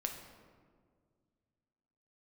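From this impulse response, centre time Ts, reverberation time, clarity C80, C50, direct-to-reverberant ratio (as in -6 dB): 35 ms, 1.9 s, 8.0 dB, 6.0 dB, 3.0 dB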